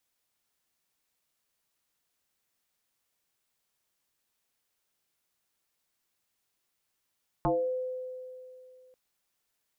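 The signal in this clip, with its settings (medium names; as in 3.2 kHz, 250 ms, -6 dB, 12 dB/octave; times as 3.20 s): FM tone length 1.49 s, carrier 510 Hz, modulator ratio 0.36, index 3.4, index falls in 0.37 s exponential, decay 2.65 s, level -22.5 dB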